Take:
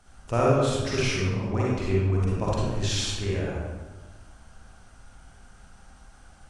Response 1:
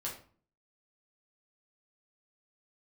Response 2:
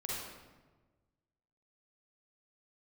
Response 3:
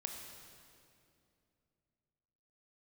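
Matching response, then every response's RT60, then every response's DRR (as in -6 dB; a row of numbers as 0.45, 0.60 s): 2; 0.45, 1.3, 2.6 s; -4.5, -6.0, 2.0 dB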